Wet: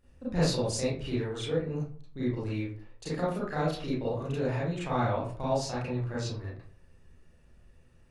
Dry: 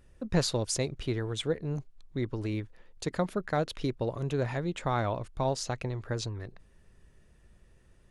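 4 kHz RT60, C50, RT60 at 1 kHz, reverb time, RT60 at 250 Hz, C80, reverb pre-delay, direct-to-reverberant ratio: 0.25 s, 0.0 dB, 0.45 s, 0.50 s, 0.50 s, 7.0 dB, 30 ms, −9.5 dB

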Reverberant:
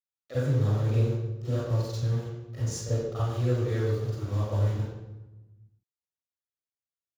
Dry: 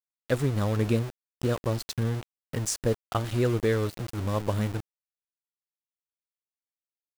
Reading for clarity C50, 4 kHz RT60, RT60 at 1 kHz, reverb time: −4.5 dB, 0.75 s, 1.0 s, 1.1 s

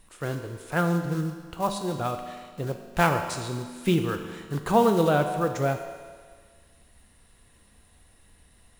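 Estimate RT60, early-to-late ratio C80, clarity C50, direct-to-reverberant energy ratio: 1.7 s, 8.5 dB, 7.0 dB, 5.0 dB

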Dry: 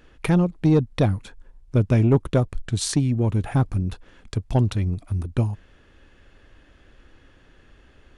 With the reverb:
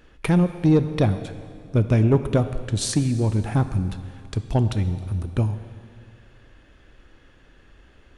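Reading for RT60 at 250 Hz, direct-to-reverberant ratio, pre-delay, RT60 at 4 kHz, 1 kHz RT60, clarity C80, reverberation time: 2.1 s, 10.0 dB, 7 ms, 2.1 s, 2.3 s, 12.0 dB, 2.3 s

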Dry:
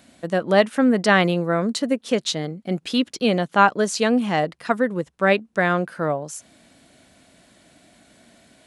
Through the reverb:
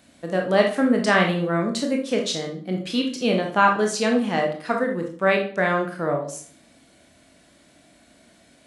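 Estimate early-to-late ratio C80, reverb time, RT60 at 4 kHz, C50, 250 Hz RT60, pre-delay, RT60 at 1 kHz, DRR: 13.0 dB, 0.50 s, 0.40 s, 6.5 dB, 0.50 s, 19 ms, 0.45 s, 1.0 dB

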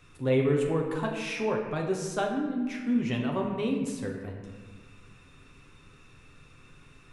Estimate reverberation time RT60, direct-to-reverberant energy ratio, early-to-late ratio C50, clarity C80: 1.5 s, −0.5 dB, 4.0 dB, 6.0 dB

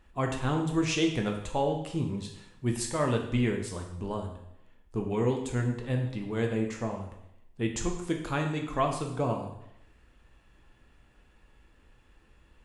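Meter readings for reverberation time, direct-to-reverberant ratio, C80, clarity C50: 0.80 s, 2.0 dB, 8.5 dB, 6.0 dB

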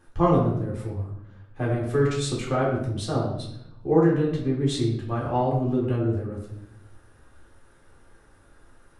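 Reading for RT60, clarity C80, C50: 0.75 s, 7.0 dB, 4.5 dB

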